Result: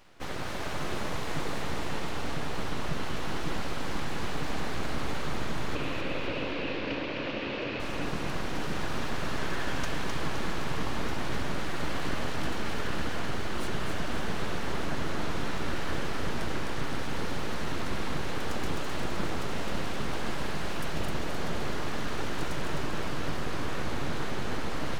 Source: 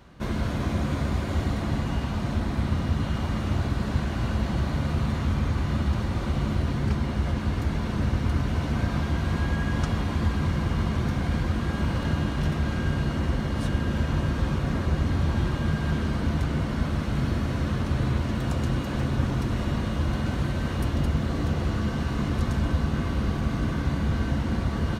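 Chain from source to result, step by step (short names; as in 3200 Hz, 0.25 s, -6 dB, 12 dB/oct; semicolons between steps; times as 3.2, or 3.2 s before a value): low shelf 270 Hz -9 dB; full-wave rectifier; 5.75–7.8 speaker cabinet 120–4600 Hz, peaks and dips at 170 Hz -9 dB, 290 Hz +6 dB, 530 Hz +8 dB, 780 Hz -5 dB, 1300 Hz -3 dB, 2600 Hz +10 dB; split-band echo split 390 Hz, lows 0.549 s, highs 0.259 s, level -4 dB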